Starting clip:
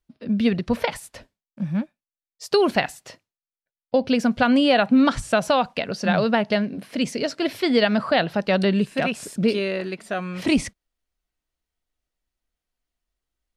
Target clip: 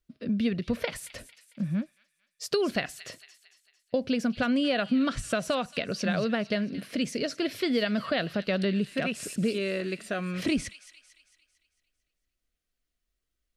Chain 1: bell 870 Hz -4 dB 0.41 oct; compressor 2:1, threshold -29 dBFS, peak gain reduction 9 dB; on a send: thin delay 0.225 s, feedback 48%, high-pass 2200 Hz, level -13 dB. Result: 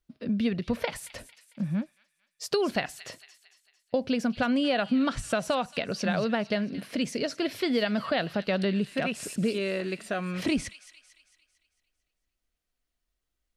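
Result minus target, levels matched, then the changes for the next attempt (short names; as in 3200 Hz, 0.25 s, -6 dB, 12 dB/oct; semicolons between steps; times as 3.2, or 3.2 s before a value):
1000 Hz band +2.5 dB
change: bell 870 Hz -13 dB 0.41 oct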